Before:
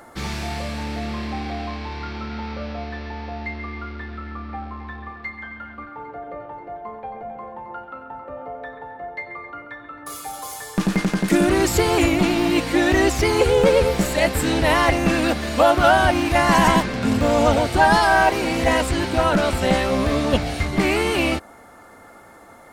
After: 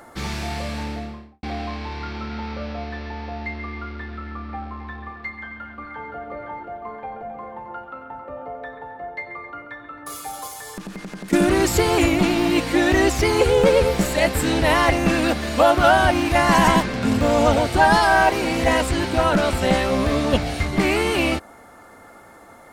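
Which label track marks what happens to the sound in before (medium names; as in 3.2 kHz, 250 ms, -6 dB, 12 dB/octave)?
0.780000	1.430000	studio fade out
5.320000	6.110000	echo throw 520 ms, feedback 55%, level -5.5 dB
10.470000	11.330000	compression, threshold -31 dBFS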